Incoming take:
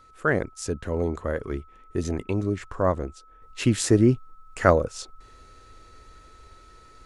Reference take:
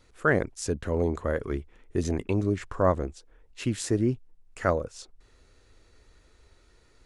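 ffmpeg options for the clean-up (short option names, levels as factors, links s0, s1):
-af "bandreject=f=1300:w=30,asetnsamples=n=441:p=0,asendcmd='3.42 volume volume -7dB',volume=1"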